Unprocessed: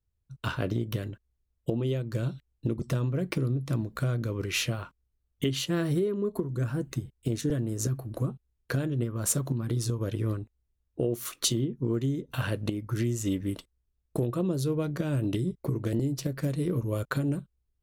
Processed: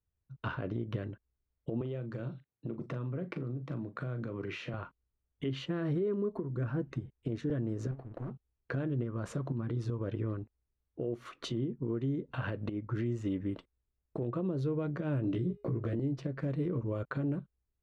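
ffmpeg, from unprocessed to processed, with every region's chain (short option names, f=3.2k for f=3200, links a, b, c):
-filter_complex "[0:a]asettb=1/sr,asplit=3[a][b][c];[a]atrim=end=1.814[d];[b]atrim=start=1.81:end=4.74,asetpts=PTS-STARTPTS,afade=t=in:d=0.004:c=qsin,afade=t=out:st=2.926:d=0.004:c=qsin,highpass=f=110:w=0.5412,highpass=f=110:w=1.3066,acompressor=threshold=-31dB:ratio=4:attack=3.2:release=140:knee=1:detection=peak,asplit=2[e][f];[f]adelay=40,volume=-11.5dB[g];[e][g]amix=inputs=2:normalize=0,atrim=end_sample=129213[h];[c]atrim=start=4.736[i];[d][h]acrossfade=d=0.004:c1=hsin:c2=qsin[j];[j][i]acrossfade=d=0.004:c1=qsin:c2=hsin,asettb=1/sr,asplit=3[k][l][m];[k]atrim=end=7.914[n];[l]atrim=start=7.91:end=8.31,asetpts=PTS-STARTPTS,afade=t=in:d=0.004:c=qsin,afade=t=out:st=0.396:d=0.004:c=qsin,aeval=exprs='(tanh(35.5*val(0)+0.45)-tanh(0.45))/35.5':c=same,aeval=exprs='sgn(val(0))*max(abs(val(0))-0.00266,0)':c=same[o];[m]atrim=start=8.306[p];[n][o]acrossfade=d=0.004:c1=hsin:c2=qsin[q];[q][p]acrossfade=d=0.004:c1=qsin:c2=hsin,asettb=1/sr,asplit=3[r][s][t];[r]atrim=end=15.254[u];[s]atrim=start=15.25:end=15.96,asetpts=PTS-STARTPTS,afade=t=in:d=0.004:c=qsin,afade=t=out:st=0.706:d=0.004:c=qsin,bandreject=f=900:w=6,asplit=2[v][w];[w]adelay=17,volume=-3dB[x];[v][x]amix=inputs=2:normalize=0,atrim=end_sample=31311,bandreject=f=412.9:t=h:w=4,bandreject=f=825.8:t=h:w=4,bandreject=f=1.2387k:t=h:w=4,bandreject=f=1.6516k:t=h:w=4,bandreject=f=2.0645k:t=h:w=4,bandreject=f=2.4774k:t=h:w=4,bandreject=f=2.8903k:t=h:w=4,bandreject=f=3.3032k:t=h:w=4,bandreject=f=3.7161k:t=h:w=4,bandreject=f=4.129k:t=h:w=4,bandreject=f=4.5419k:t=h:w=4,bandreject=f=4.9548k:t=h:w=4,bandreject=f=5.3677k:t=h:w=4,bandreject=f=5.7806k:t=h:w=4,bandreject=f=6.1935k:t=h:w=4,bandreject=f=6.6064k:t=h:w=4,bandreject=f=7.0193k:t=h:w=4,bandreject=f=7.4322k:t=h:w=4,bandreject=f=7.8451k:t=h:w=4,bandreject=f=8.258k:t=h:w=4,bandreject=f=8.6709k:t=h:w=4,bandreject=f=9.0838k:t=h:w=4,bandreject=f=9.4967k:t=h:w=4,bandreject=f=9.9096k:t=h:w=4,bandreject=f=10.3225k:t=h:w=4,bandreject=f=10.7354k:t=h:w=4,bandreject=f=11.1483k:t=h:w=4,bandreject=f=11.5612k:t=h:w=4,bandreject=f=11.9741k:t=h:w=4,bandreject=f=12.387k:t=h:w=4,bandreject=f=12.7999k:t=h:w=4,bandreject=f=13.2128k:t=h:w=4,bandreject=f=13.6257k:t=h:w=4,bandreject=f=14.0386k:t=h:w=4,bandreject=f=14.4515k:t=h:w=4,bandreject=f=14.8644k:t=h:w=4,bandreject=f=15.2773k:t=h:w=4[y];[t]atrim=start=15.956[z];[u][y]acrossfade=d=0.004:c1=hsin:c2=qsin[aa];[aa][z]acrossfade=d=0.004:c1=qsin:c2=hsin,lowpass=2k,lowshelf=f=79:g=-8,alimiter=limit=-23.5dB:level=0:latency=1:release=75,volume=-1.5dB"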